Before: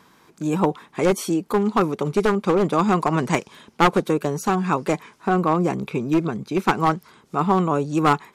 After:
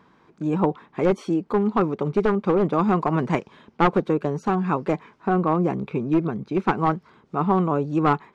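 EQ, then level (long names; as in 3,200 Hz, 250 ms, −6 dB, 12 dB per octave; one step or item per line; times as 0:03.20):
head-to-tape spacing loss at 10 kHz 26 dB
0.0 dB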